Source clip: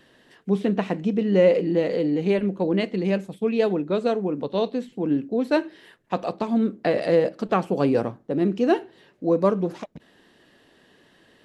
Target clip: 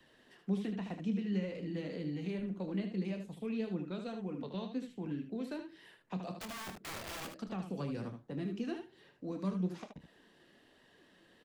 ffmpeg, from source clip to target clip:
ffmpeg -i in.wav -filter_complex "[0:a]acrossover=split=260|1100[link_01][link_02][link_03];[link_02]acompressor=threshold=-36dB:ratio=6[link_04];[link_03]alimiter=level_in=0.5dB:limit=-24dB:level=0:latency=1:release=249,volume=-0.5dB[link_05];[link_01][link_04][link_05]amix=inputs=3:normalize=0,acrossover=split=260|1200|2400[link_06][link_07][link_08][link_09];[link_06]acompressor=threshold=-27dB:ratio=4[link_10];[link_07]acompressor=threshold=-33dB:ratio=4[link_11];[link_08]acompressor=threshold=-52dB:ratio=4[link_12];[link_09]acompressor=threshold=-47dB:ratio=4[link_13];[link_10][link_11][link_12][link_13]amix=inputs=4:normalize=0,flanger=delay=1:depth=4.8:regen=57:speed=1.2:shape=sinusoidal,asettb=1/sr,asplit=3[link_14][link_15][link_16];[link_14]atrim=end=6.324[link_17];[link_15]atrim=start=6.32:end=7.32,asetpts=PTS-STARTPTS,afade=type=in:duration=0.004:curve=qsin,afade=type=out:start_time=0.996:duration=0.004:curve=qsin,aeval=exprs='(mod(53.1*val(0)+1,2)-1)/53.1':channel_layout=same[link_18];[link_16]atrim=start=7.316[link_19];[link_17][link_18]acrossfade=duration=0.004:curve1=hsin:curve2=qsin[link_20];[link_20][link_19]acrossfade=duration=0.004:curve1=qsin:curve2=hsin,aecho=1:1:27|76:0.282|0.422,volume=-4.5dB" out.wav

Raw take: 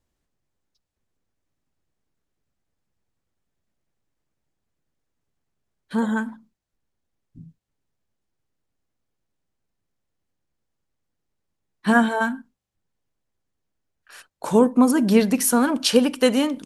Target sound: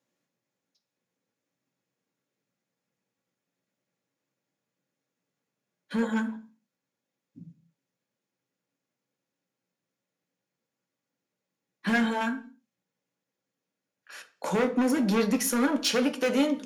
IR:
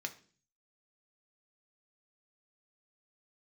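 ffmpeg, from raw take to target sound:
-filter_complex "[0:a]highpass=frequency=120:width=0.5412,highpass=frequency=120:width=1.3066,equalizer=frequency=500:width_type=o:width=0.32:gain=7,asplit=2[link_01][link_02];[link_02]acompressor=threshold=-29dB:ratio=4,volume=-1.5dB[link_03];[link_01][link_03]amix=inputs=2:normalize=0,asoftclip=type=hard:threshold=-14dB[link_04];[1:a]atrim=start_sample=2205,afade=type=out:start_time=0.3:duration=0.01,atrim=end_sample=13671[link_05];[link_04][link_05]afir=irnorm=-1:irlink=0,volume=-5dB"

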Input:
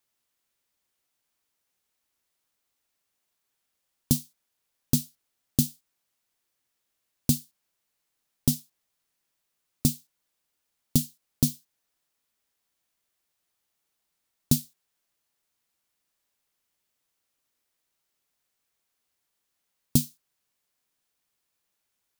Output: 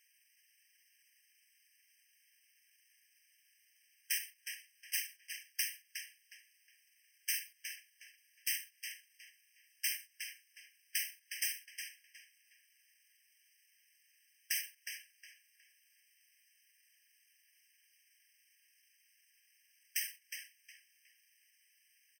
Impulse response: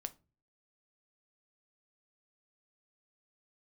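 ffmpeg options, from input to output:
-filter_complex "[0:a]highpass=150,highshelf=frequency=3700:width_type=q:width=1.5:gain=12,asplit=2[link_01][link_02];[link_02]acontrast=83,volume=1dB[link_03];[link_01][link_03]amix=inputs=2:normalize=0,alimiter=limit=-9.5dB:level=0:latency=1:release=313,asplit=3[link_04][link_05][link_06];[link_04]bandpass=frequency=530:width_type=q:width=8,volume=0dB[link_07];[link_05]bandpass=frequency=1840:width_type=q:width=8,volume=-6dB[link_08];[link_06]bandpass=frequency=2480:width_type=q:width=8,volume=-9dB[link_09];[link_07][link_08][link_09]amix=inputs=3:normalize=0,asetrate=35002,aresample=44100,atempo=1.25992,crystalizer=i=2.5:c=0,aeval=exprs='abs(val(0))':channel_layout=same,asplit=2[link_10][link_11];[link_11]asetrate=33038,aresample=44100,atempo=1.33484,volume=-11dB[link_12];[link_10][link_12]amix=inputs=2:normalize=0,asplit=2[link_13][link_14];[link_14]adelay=363,lowpass=frequency=4700:poles=1,volume=-5dB,asplit=2[link_15][link_16];[link_16]adelay=363,lowpass=frequency=4700:poles=1,volume=0.31,asplit=2[link_17][link_18];[link_18]adelay=363,lowpass=frequency=4700:poles=1,volume=0.31,asplit=2[link_19][link_20];[link_20]adelay=363,lowpass=frequency=4700:poles=1,volume=0.31[link_21];[link_13][link_15][link_17][link_19][link_21]amix=inputs=5:normalize=0,afftfilt=real='re*eq(mod(floor(b*sr/1024/1600),2),1)':imag='im*eq(mod(floor(b*sr/1024/1600),2),1)':win_size=1024:overlap=0.75,volume=14.5dB"

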